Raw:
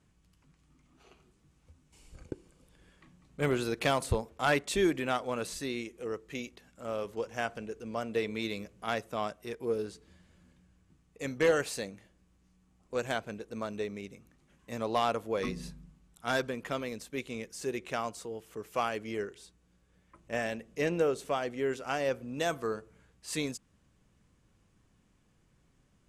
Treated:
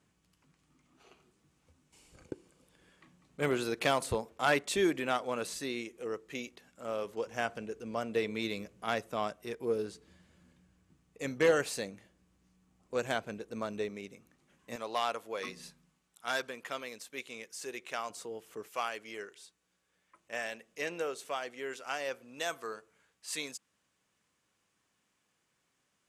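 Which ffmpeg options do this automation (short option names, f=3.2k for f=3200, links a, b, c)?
-af "asetnsamples=n=441:p=0,asendcmd='7.26 highpass f 98;13.89 highpass f 230;14.76 highpass f 960;18.1 highpass f 320;18.68 highpass f 1100',highpass=f=220:p=1"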